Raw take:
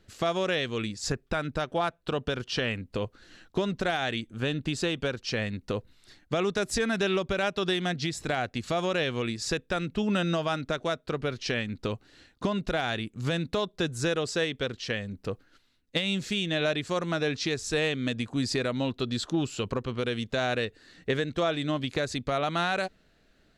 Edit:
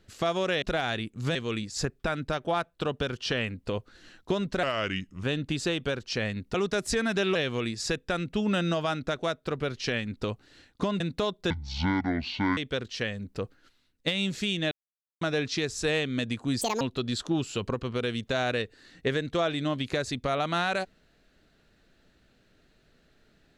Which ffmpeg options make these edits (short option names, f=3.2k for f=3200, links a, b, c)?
-filter_complex "[0:a]asplit=14[a][b][c][d][e][f][g][h][i][j][k][l][m][n];[a]atrim=end=0.622[o];[b]atrim=start=12.618:end=13.352[p];[c]atrim=start=0.618:end=3.904[q];[d]atrim=start=3.9:end=4.4,asetpts=PTS-STARTPTS,asetrate=36603,aresample=44100,atrim=end_sample=26566,asetpts=PTS-STARTPTS[r];[e]atrim=start=4.396:end=5.712[s];[f]atrim=start=6.378:end=7.192[t];[g]atrim=start=8.968:end=12.622[u];[h]atrim=start=13.348:end=13.854[v];[i]atrim=start=13.85:end=14.46,asetpts=PTS-STARTPTS,asetrate=25137,aresample=44100[w];[j]atrim=start=14.456:end=16.6,asetpts=PTS-STARTPTS,afade=t=out:st=2.14:d=0.004:c=hsin[x];[k]atrim=start=16.6:end=17.1,asetpts=PTS-STARTPTS,volume=0[y];[l]atrim=start=17.1:end=18.504,asetpts=PTS-STARTPTS,afade=t=in:d=0.004:c=hsin[z];[m]atrim=start=18.5:end=18.84,asetpts=PTS-STARTPTS,asetrate=76293,aresample=44100,atrim=end_sample=8667,asetpts=PTS-STARTPTS[aa];[n]atrim=start=18.836[ab];[o][p]acrossfade=d=0.004:c1=hsin:c2=hsin[ac];[ac][q]acrossfade=d=0.004:c1=hsin:c2=hsin[ad];[ad][r]acrossfade=d=0.004:c1=hsin:c2=hsin[ae];[ae][s]acrossfade=d=0.004:c1=hsin:c2=hsin[af];[af][t]acrossfade=d=0.004:c1=hsin:c2=hsin[ag];[ag][u]acrossfade=d=0.004:c1=hsin:c2=hsin[ah];[ah][v]acrossfade=d=0.004:c1=hsin:c2=hsin[ai];[ai][w]acrossfade=d=0.004:c1=hsin:c2=hsin[aj];[x][y][z]concat=n=3:v=0:a=1[ak];[aj][ak]acrossfade=d=0.004:c1=hsin:c2=hsin[al];[al][aa]acrossfade=d=0.004:c1=hsin:c2=hsin[am];[am][ab]acrossfade=d=0.004:c1=hsin:c2=hsin"